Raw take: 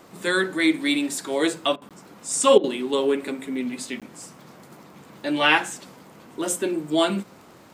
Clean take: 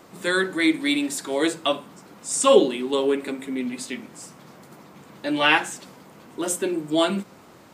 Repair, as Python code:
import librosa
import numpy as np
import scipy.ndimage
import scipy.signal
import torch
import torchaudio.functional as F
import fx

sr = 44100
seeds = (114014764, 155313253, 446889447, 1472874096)

y = fx.fix_declick_ar(x, sr, threshold=6.5)
y = fx.fix_interpolate(y, sr, at_s=(1.89, 4.0), length_ms=17.0)
y = fx.fix_interpolate(y, sr, at_s=(1.76, 2.58), length_ms=56.0)